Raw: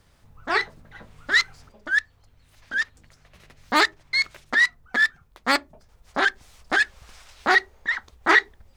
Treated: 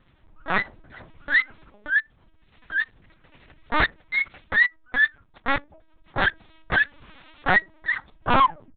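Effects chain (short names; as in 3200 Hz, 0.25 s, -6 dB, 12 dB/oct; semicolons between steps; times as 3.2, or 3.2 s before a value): tape stop at the end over 0.60 s; wavefolder -10 dBFS; LPC vocoder at 8 kHz pitch kept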